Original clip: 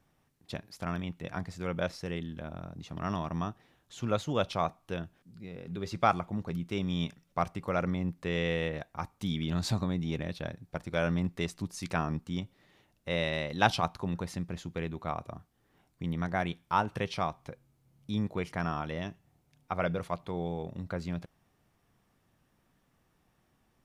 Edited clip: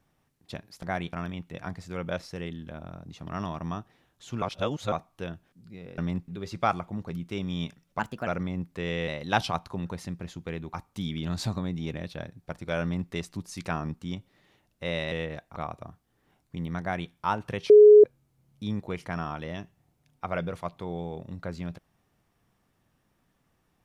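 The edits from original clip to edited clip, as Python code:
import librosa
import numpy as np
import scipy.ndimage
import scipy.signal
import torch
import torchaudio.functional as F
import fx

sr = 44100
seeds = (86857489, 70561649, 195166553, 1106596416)

y = fx.edit(x, sr, fx.reverse_span(start_s=4.12, length_s=0.5),
    fx.speed_span(start_s=7.39, length_s=0.35, speed=1.26),
    fx.swap(start_s=8.55, length_s=0.44, other_s=13.37, other_length_s=1.66),
    fx.duplicate(start_s=11.07, length_s=0.3, to_s=5.68),
    fx.duplicate(start_s=16.28, length_s=0.3, to_s=0.83),
    fx.bleep(start_s=17.17, length_s=0.34, hz=420.0, db=-9.0), tone=tone)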